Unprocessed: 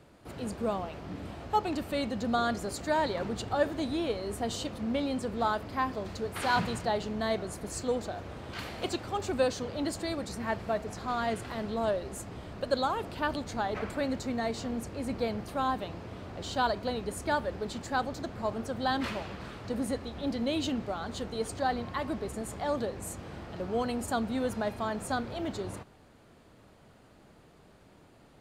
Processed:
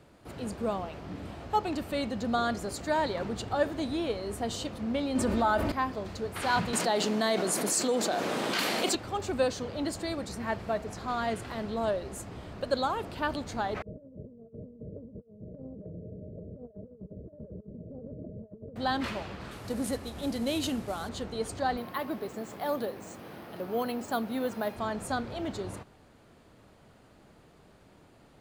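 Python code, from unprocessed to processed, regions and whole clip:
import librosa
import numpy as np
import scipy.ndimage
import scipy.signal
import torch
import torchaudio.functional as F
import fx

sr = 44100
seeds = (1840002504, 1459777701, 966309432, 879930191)

y = fx.chain(x, sr, fx.comb(ms=3.3, depth=0.5),
    fx.dynamic_eq(hz=4600.0, q=0.91, threshold_db=-49.0, ratio=4.0, max_db=-5),
    fx.env_flatten(amount_pct=70), at=(5.15, 5.72))
y = fx.chain(y, sr, fx.highpass(hz=190.0, slope=24),
    fx.high_shelf(hz=4000.0, db=8.0),
    fx.env_flatten(amount_pct=70), at=(6.73, 8.95))
y = fx.chain(y, sr, fx.cheby_ripple(hz=640.0, ripple_db=9),
    fx.over_compress(threshold_db=-44.0, ratio=-0.5), at=(13.82, 18.76))
y = fx.chain(y, sr, fx.cvsd(bps=64000),
    fx.high_shelf(hz=7100.0, db=7.5), at=(19.51, 21.09))
y = fx.chain(y, sr, fx.highpass(hz=180.0, slope=12),
    fx.resample_bad(factor=3, down='filtered', up='hold'), at=(21.77, 24.76))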